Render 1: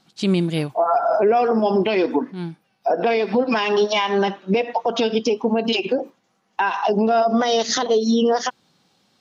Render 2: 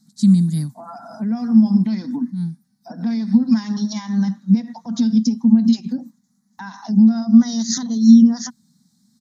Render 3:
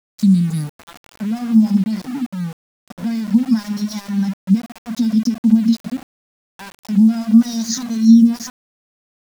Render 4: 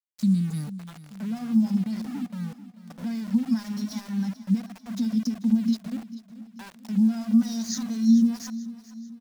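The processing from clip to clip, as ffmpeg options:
-af "firequalizer=gain_entry='entry(100,0);entry(230,13);entry(370,-28);entry(880,-14);entry(1300,-14);entry(1900,-10);entry(2700,-30);entry(3900,-4);entry(7400,7)':delay=0.05:min_phase=1,volume=-1dB"
-af "aeval=exprs='val(0)*gte(abs(val(0)),0.0316)':c=same"
-af "aecho=1:1:439|878|1317|1756:0.158|0.0777|0.0381|0.0186,volume=-9dB"

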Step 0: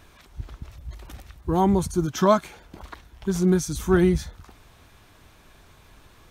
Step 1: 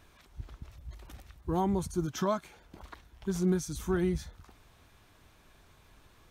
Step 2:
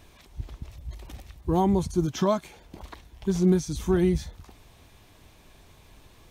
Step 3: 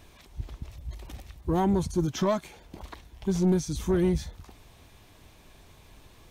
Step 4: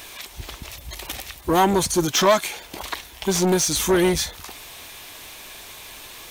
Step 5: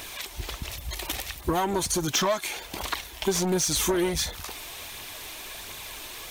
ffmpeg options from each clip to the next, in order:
-af "alimiter=limit=-11dB:level=0:latency=1:release=433,volume=-7.5dB"
-filter_complex "[0:a]acrossover=split=6000[a][b];[b]acompressor=threshold=-53dB:ratio=4:attack=1:release=60[c];[a][c]amix=inputs=2:normalize=0,equalizer=f=1.4k:w=2.2:g=-7.5,volume=7dB"
-af "asoftclip=type=tanh:threshold=-16.5dB"
-af "crystalizer=i=8.5:c=0,aeval=exprs='0.376*(cos(1*acos(clip(val(0)/0.376,-1,1)))-cos(1*PI/2))+0.075*(cos(5*acos(clip(val(0)/0.376,-1,1)))-cos(5*PI/2))':c=same,bass=f=250:g=-11,treble=f=4k:g=-9,volume=4dB"
-af "acompressor=threshold=-22dB:ratio=10,aphaser=in_gain=1:out_gain=1:delay=3.4:decay=0.33:speed=1.4:type=triangular"

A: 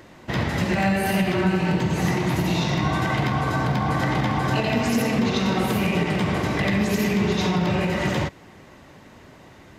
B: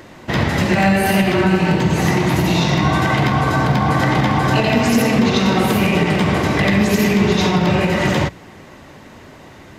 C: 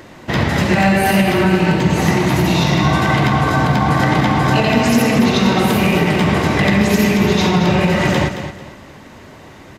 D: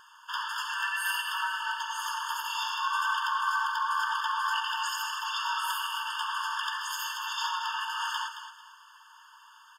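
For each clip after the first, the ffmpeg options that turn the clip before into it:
-af "bandreject=f=60:t=h:w=6,bandreject=f=120:t=h:w=6,bandreject=f=180:t=h:w=6,volume=7dB"
-af "aecho=1:1:222|444|666:0.316|0.0917|0.0266,volume=1dB"
-af "afftfilt=real='re*eq(mod(floor(b*sr/1024/900),2),1)':imag='im*eq(mod(floor(b*sr/1024/900),2),1)':win_size=1024:overlap=0.75,volume=-7.5dB"

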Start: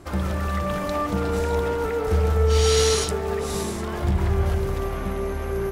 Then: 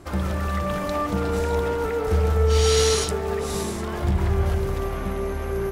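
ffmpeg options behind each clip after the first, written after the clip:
-af anull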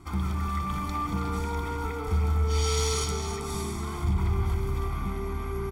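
-filter_complex "[0:a]asplit=2[a][b];[b]aecho=0:1:321:0.316[c];[a][c]amix=inputs=2:normalize=0,asoftclip=type=tanh:threshold=-13.5dB,aecho=1:1:0.9:0.91,volume=-7.5dB"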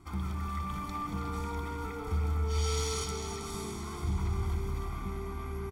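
-af "aecho=1:1:447|894|1341|1788|2235|2682:0.251|0.141|0.0788|0.0441|0.0247|0.0138,volume=-6dB"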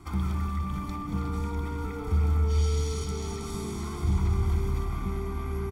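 -filter_complex "[0:a]acrossover=split=370[a][b];[b]acompressor=threshold=-46dB:ratio=4[c];[a][c]amix=inputs=2:normalize=0,volume=6.5dB"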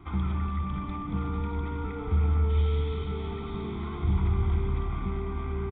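-af "aresample=8000,aresample=44100"

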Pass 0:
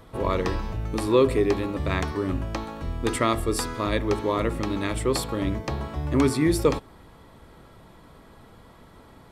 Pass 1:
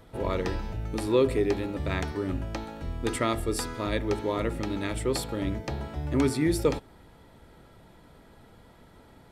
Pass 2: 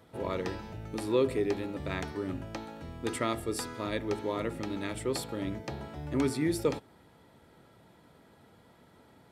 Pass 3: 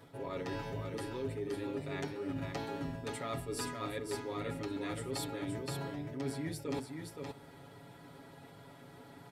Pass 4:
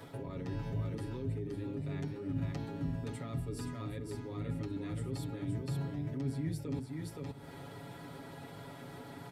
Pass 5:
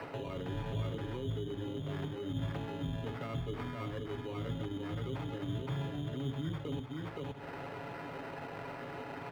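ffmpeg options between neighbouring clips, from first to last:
-af "bandreject=f=1.1k:w=6.6,volume=-3.5dB"
-af "highpass=100,volume=-4dB"
-af "aecho=1:1:7.2:0.98,areverse,acompressor=threshold=-37dB:ratio=12,areverse,aecho=1:1:521:0.562,volume=1dB"
-filter_complex "[0:a]acrossover=split=240[a][b];[b]acompressor=threshold=-53dB:ratio=10[c];[a][c]amix=inputs=2:normalize=0,volume=7dB"
-filter_complex "[0:a]acrossover=split=160[a][b];[b]acompressor=threshold=-54dB:ratio=2[c];[a][c]amix=inputs=2:normalize=0,acrusher=samples=13:mix=1:aa=0.000001,acrossover=split=340 3100:gain=0.251 1 0.1[d][e][f];[d][e][f]amix=inputs=3:normalize=0,volume=12.5dB"

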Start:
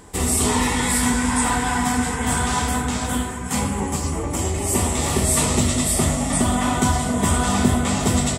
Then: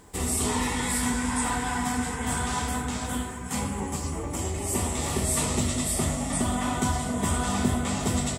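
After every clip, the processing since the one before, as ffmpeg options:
-af "acrusher=bits=8:mix=0:aa=0.5,volume=-7dB"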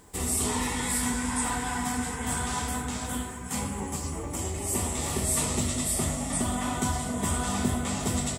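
-af "highshelf=f=7.6k:g=5,volume=-2.5dB"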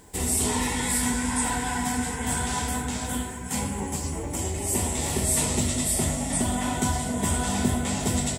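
-af "bandreject=f=1.2k:w=5.5,volume=3dB"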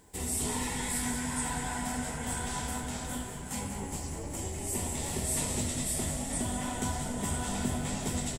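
-filter_complex "[0:a]asplit=9[a][b][c][d][e][f][g][h][i];[b]adelay=191,afreqshift=-95,volume=-9dB[j];[c]adelay=382,afreqshift=-190,volume=-13dB[k];[d]adelay=573,afreqshift=-285,volume=-17dB[l];[e]adelay=764,afreqshift=-380,volume=-21dB[m];[f]adelay=955,afreqshift=-475,volume=-25.1dB[n];[g]adelay=1146,afreqshift=-570,volume=-29.1dB[o];[h]adelay=1337,afreqshift=-665,volume=-33.1dB[p];[i]adelay=1528,afreqshift=-760,volume=-37.1dB[q];[a][j][k][l][m][n][o][p][q]amix=inputs=9:normalize=0,volume=-8dB"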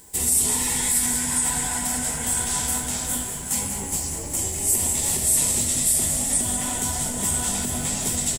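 -af "alimiter=limit=-24dB:level=0:latency=1:release=80,crystalizer=i=3:c=0,volume=4dB"

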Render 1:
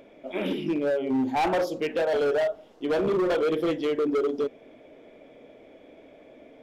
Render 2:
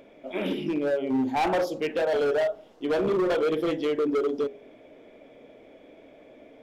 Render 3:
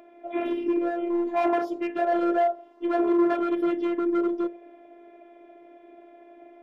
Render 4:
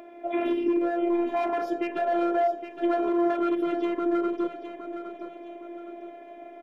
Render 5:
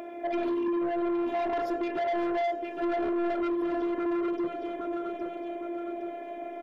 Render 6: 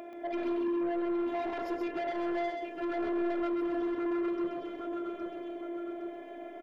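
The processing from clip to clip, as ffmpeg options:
-af "bandreject=f=82.51:t=h:w=4,bandreject=f=165.02:t=h:w=4,bandreject=f=247.53:t=h:w=4,bandreject=f=330.04:t=h:w=4,bandreject=f=412.55:t=h:w=4,bandreject=f=495.06:t=h:w=4,bandreject=f=577.57:t=h:w=4,bandreject=f=660.08:t=h:w=4,bandreject=f=742.59:t=h:w=4,bandreject=f=825.1:t=h:w=4"
-filter_complex "[0:a]acrossover=split=200 2100:gain=0.0794 1 0.178[a][b][c];[a][b][c]amix=inputs=3:normalize=0,afftfilt=real='hypot(re,im)*cos(PI*b)':imag='0':win_size=512:overlap=0.75,volume=5.5dB"
-af "alimiter=limit=-22dB:level=0:latency=1:release=245,aecho=1:1:814|1628|2442|3256:0.335|0.127|0.0484|0.0184,volume=5.5dB"
-filter_complex "[0:a]asplit=2[a][b];[b]acompressor=threshold=-33dB:ratio=6,volume=0dB[c];[a][c]amix=inputs=2:normalize=0,asoftclip=type=tanh:threshold=-25.5dB"
-af "aecho=1:1:130:0.596,volume=-4.5dB"

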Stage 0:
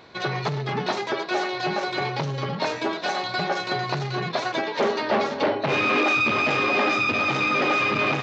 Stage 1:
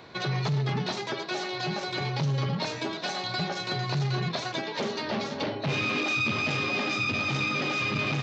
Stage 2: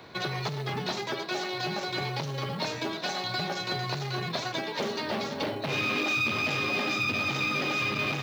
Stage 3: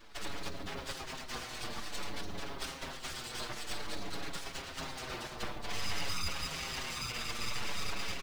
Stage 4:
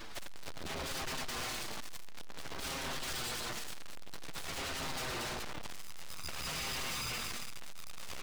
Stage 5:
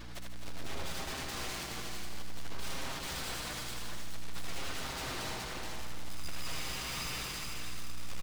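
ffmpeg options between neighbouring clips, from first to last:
-filter_complex "[0:a]equalizer=f=130:w=0.89:g=3.5,acrossover=split=210|3000[a][b][c];[b]acompressor=threshold=-33dB:ratio=4[d];[a][d][c]amix=inputs=3:normalize=0"
-filter_complex "[0:a]acrossover=split=290|1400[a][b][c];[a]alimiter=level_in=9dB:limit=-24dB:level=0:latency=1,volume=-9dB[d];[d][b][c]amix=inputs=3:normalize=0,acrusher=bits=7:mode=log:mix=0:aa=0.000001"
-filter_complex "[0:a]afftfilt=real='hypot(re,im)*cos(2*PI*random(0))':imag='hypot(re,im)*sin(2*PI*random(1))':win_size=512:overlap=0.75,aeval=exprs='abs(val(0))':c=same,asplit=2[a][b];[b]adelay=6.4,afreqshift=-0.53[c];[a][c]amix=inputs=2:normalize=1,volume=3dB"
-af "alimiter=level_in=8.5dB:limit=-24dB:level=0:latency=1:release=15,volume=-8.5dB,aeval=exprs='(tanh(355*val(0)+0.15)-tanh(0.15))/355':c=same,volume=14dB"
-filter_complex "[0:a]asplit=2[a][b];[b]aecho=0:1:254|422|825:0.335|0.596|0.133[c];[a][c]amix=inputs=2:normalize=0,aeval=exprs='val(0)+0.00562*(sin(2*PI*60*n/s)+sin(2*PI*2*60*n/s)/2+sin(2*PI*3*60*n/s)/3+sin(2*PI*4*60*n/s)/4+sin(2*PI*5*60*n/s)/5)':c=same,asplit=2[d][e];[e]aecho=0:1:77|154|231|308|385|462|539:0.473|0.265|0.148|0.0831|0.0465|0.0261|0.0146[f];[d][f]amix=inputs=2:normalize=0,volume=-3dB"

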